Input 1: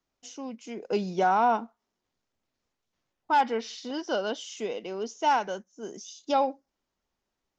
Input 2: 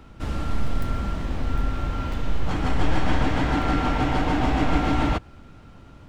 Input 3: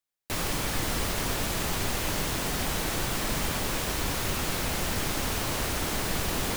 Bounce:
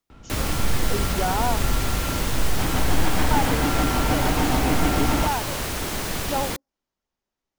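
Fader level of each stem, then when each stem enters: −3.0, 0.0, +1.5 decibels; 0.00, 0.10, 0.00 seconds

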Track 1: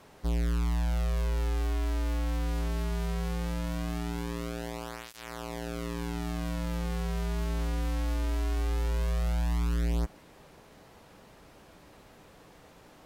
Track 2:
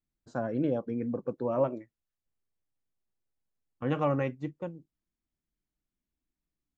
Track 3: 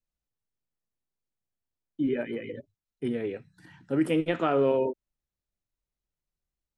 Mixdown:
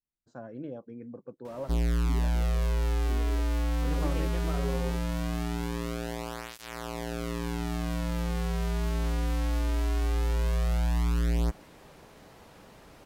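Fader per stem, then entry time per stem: +2.0, −10.5, −14.0 decibels; 1.45, 0.00, 0.05 seconds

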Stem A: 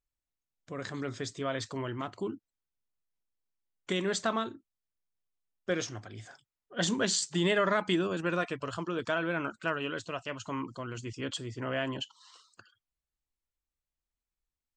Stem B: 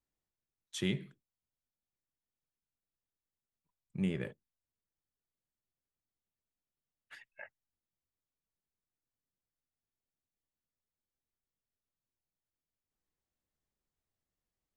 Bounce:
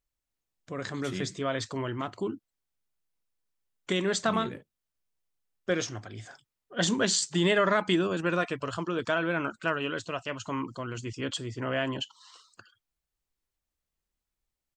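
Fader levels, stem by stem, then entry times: +3.0, −3.0 decibels; 0.00, 0.30 seconds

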